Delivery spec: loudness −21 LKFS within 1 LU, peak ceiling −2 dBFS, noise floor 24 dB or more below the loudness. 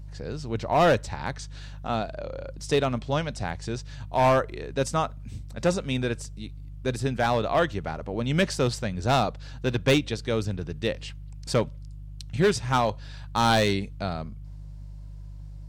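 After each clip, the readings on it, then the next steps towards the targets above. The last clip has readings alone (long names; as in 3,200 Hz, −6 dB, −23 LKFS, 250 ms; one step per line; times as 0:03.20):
share of clipped samples 0.8%; peaks flattened at −15.0 dBFS; mains hum 50 Hz; hum harmonics up to 150 Hz; level of the hum −37 dBFS; integrated loudness −26.5 LKFS; sample peak −15.0 dBFS; target loudness −21.0 LKFS
→ clipped peaks rebuilt −15 dBFS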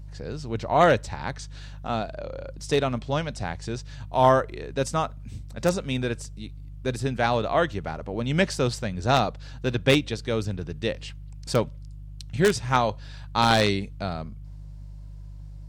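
share of clipped samples 0.0%; mains hum 50 Hz; hum harmonics up to 150 Hz; level of the hum −37 dBFS
→ hum removal 50 Hz, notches 3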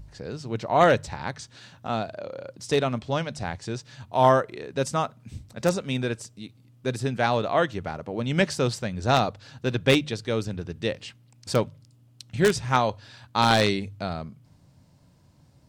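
mains hum none found; integrated loudness −25.5 LKFS; sample peak −5.5 dBFS; target loudness −21.0 LKFS
→ level +4.5 dB
brickwall limiter −2 dBFS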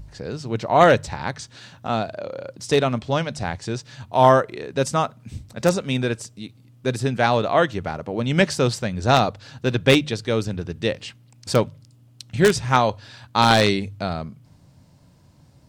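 integrated loudness −21.5 LKFS; sample peak −2.0 dBFS; background noise floor −53 dBFS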